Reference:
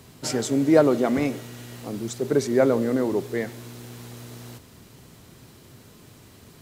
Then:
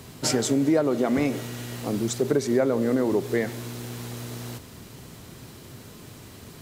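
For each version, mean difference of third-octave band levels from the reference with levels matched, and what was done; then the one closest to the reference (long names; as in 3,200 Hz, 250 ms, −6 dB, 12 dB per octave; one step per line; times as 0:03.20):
5.0 dB: downward compressor 5 to 1, threshold −24 dBFS, peak gain reduction 12 dB
level +5 dB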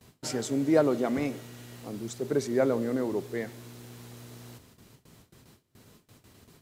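1.0 dB: noise gate with hold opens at −38 dBFS
level −6 dB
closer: second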